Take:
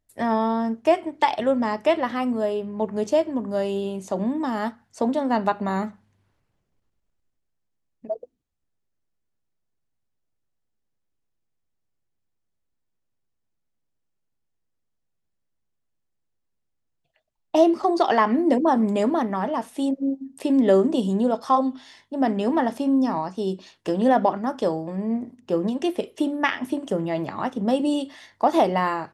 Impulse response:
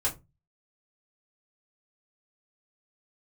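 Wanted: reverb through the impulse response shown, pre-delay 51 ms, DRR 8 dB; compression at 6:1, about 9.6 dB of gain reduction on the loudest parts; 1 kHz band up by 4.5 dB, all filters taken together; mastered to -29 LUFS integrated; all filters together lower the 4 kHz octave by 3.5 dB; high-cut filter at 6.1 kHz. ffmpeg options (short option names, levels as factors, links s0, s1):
-filter_complex "[0:a]lowpass=6100,equalizer=f=1000:t=o:g=6,equalizer=f=4000:t=o:g=-5,acompressor=threshold=0.1:ratio=6,asplit=2[s0][s1];[1:a]atrim=start_sample=2205,adelay=51[s2];[s1][s2]afir=irnorm=-1:irlink=0,volume=0.178[s3];[s0][s3]amix=inputs=2:normalize=0,volume=0.668"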